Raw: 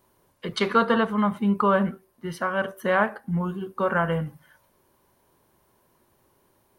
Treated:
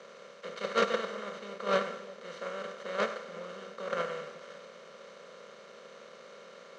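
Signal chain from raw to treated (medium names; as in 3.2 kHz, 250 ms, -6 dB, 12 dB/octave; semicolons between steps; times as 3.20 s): spectral levelling over time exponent 0.2; gate -8 dBFS, range -40 dB; peaking EQ 2.3 kHz +6 dB 1.7 oct; waveshaping leveller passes 2; cabinet simulation 230–7900 Hz, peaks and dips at 290 Hz -7 dB, 520 Hz +10 dB, 860 Hz -10 dB, 1.6 kHz -5 dB, 6.3 kHz +6 dB; two-band feedback delay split 690 Hz, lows 359 ms, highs 100 ms, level -14 dB; three bands expanded up and down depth 40%; trim +6.5 dB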